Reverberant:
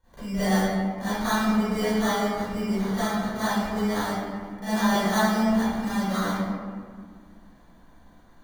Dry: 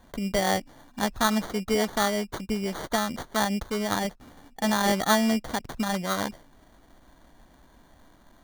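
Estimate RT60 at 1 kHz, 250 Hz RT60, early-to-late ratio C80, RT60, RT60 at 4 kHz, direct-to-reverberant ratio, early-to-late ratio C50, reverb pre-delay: 1.7 s, 2.8 s, −3.0 dB, 1.8 s, 1.0 s, −18.0 dB, −8.5 dB, 34 ms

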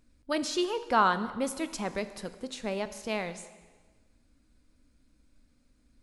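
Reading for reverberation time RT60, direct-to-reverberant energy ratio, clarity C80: 1.4 s, 11.0 dB, 14.5 dB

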